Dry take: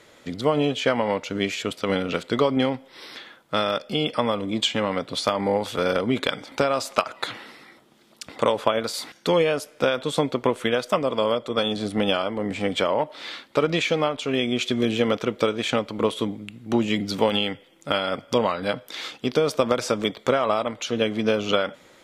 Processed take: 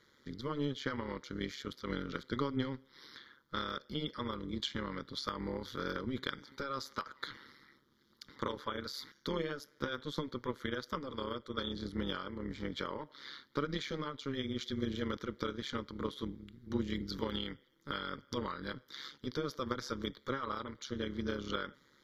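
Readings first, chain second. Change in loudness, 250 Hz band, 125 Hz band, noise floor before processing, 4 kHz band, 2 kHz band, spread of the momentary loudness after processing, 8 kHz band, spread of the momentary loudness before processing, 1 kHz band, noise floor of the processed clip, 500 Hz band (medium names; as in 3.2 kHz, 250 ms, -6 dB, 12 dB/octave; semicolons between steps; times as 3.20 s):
-15.5 dB, -13.0 dB, -11.0 dB, -54 dBFS, -14.5 dB, -14.0 dB, 7 LU, -17.5 dB, 7 LU, -15.0 dB, -69 dBFS, -18.5 dB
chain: AM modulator 140 Hz, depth 70%; static phaser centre 2.6 kHz, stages 6; trim -7.5 dB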